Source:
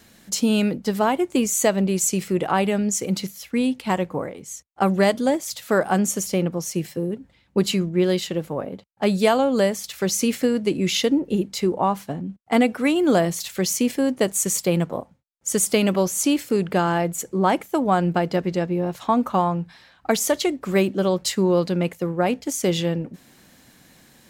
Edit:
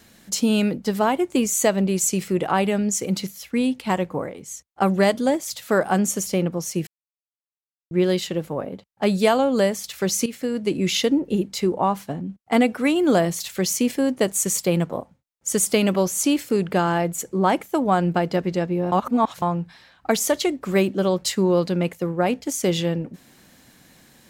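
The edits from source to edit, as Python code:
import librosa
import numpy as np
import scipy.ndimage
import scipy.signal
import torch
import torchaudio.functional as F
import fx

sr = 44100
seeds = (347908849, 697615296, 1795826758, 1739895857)

y = fx.edit(x, sr, fx.silence(start_s=6.87, length_s=1.04),
    fx.fade_in_from(start_s=10.26, length_s=0.5, floor_db=-13.0),
    fx.reverse_span(start_s=18.92, length_s=0.5), tone=tone)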